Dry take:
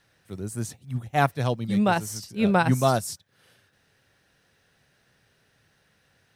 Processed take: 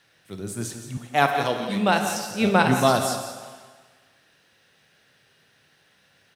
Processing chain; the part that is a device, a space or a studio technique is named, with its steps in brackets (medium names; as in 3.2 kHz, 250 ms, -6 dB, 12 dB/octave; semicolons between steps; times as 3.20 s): PA in a hall (high-pass 180 Hz 6 dB/octave; peaking EQ 3.1 kHz +4.5 dB 1.2 oct; delay 174 ms -12 dB; reverberation RT60 1.5 s, pre-delay 22 ms, DRR 5.5 dB); 0.97–2.31 s: high-pass 190 Hz 12 dB/octave; trim +2 dB